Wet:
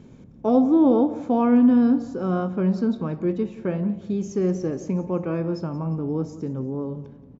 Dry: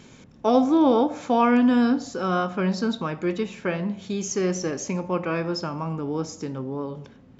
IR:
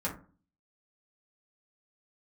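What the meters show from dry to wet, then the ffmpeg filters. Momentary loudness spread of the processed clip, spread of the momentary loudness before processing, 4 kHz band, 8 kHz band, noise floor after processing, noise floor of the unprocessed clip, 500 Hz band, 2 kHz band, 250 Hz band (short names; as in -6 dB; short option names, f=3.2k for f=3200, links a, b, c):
12 LU, 13 LU, under -10 dB, n/a, -46 dBFS, -50 dBFS, 0.0 dB, -10.0 dB, +3.0 dB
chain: -filter_complex "[0:a]tiltshelf=f=860:g=9.5,asplit=2[a][b];[b]aecho=0:1:177|354|531|708:0.141|0.0593|0.0249|0.0105[c];[a][c]amix=inputs=2:normalize=0,volume=-5dB"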